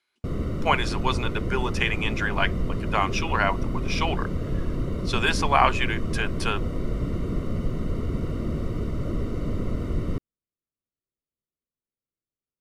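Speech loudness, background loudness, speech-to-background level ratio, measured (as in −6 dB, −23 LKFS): −26.5 LKFS, −30.0 LKFS, 3.5 dB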